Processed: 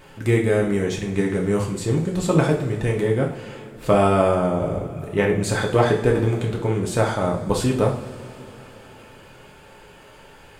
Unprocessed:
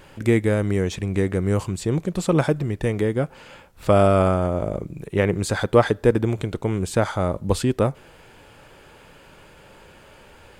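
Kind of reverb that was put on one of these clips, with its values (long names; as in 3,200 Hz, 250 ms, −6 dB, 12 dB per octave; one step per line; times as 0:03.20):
coupled-rooms reverb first 0.44 s, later 4 s, from −20 dB, DRR −1.5 dB
level −2 dB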